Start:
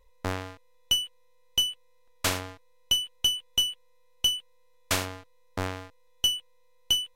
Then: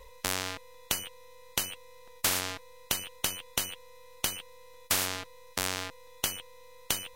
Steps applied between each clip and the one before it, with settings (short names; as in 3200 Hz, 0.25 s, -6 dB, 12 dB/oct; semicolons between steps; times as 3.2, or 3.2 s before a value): spectral compressor 4:1; gain +4 dB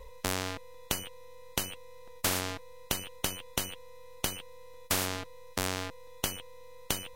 tilt shelf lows +4 dB, about 810 Hz; gain +1 dB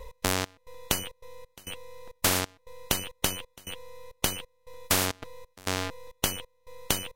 step gate "x.xx..xxx" 135 bpm -24 dB; gain +5 dB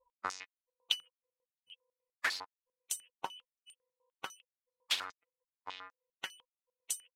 per-bin expansion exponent 3; stepped band-pass 10 Hz 970–8000 Hz; gain +7.5 dB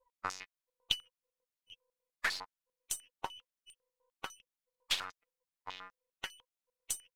half-wave gain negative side -3 dB; gain +1 dB